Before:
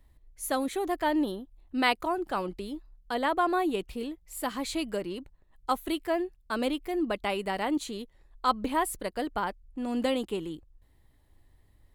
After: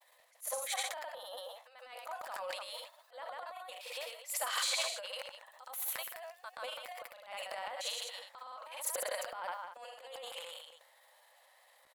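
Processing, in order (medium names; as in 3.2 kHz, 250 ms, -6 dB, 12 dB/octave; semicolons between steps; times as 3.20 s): compressor with a negative ratio -40 dBFS, ratio -1; brick-wall FIR high-pass 490 Hz; multi-tap echo 66/195 ms -14.5/-13 dB; granulator, pitch spread up and down by 0 st; transient shaper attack -10 dB, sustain +10 dB; trim +4 dB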